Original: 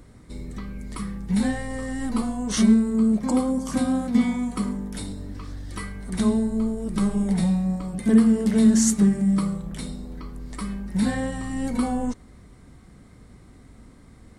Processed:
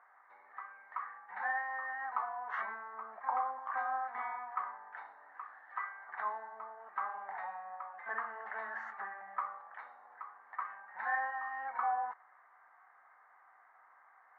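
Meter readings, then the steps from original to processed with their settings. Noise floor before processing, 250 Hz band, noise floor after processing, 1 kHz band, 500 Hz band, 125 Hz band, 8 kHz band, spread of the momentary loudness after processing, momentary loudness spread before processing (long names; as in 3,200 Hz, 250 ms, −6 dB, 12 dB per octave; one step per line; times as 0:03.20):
−49 dBFS, below −40 dB, −64 dBFS, +1.0 dB, −20.5 dB, below −40 dB, below −40 dB, 15 LU, 18 LU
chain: elliptic band-pass filter 770–1,800 Hz, stop band 80 dB
level +2 dB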